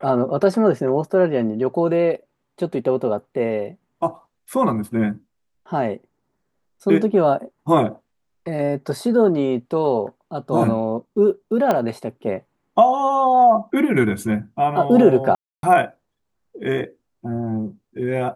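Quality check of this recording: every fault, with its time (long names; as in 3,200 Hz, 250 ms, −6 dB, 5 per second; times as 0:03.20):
0:11.71: click −7 dBFS
0:15.35–0:15.63: drop-out 282 ms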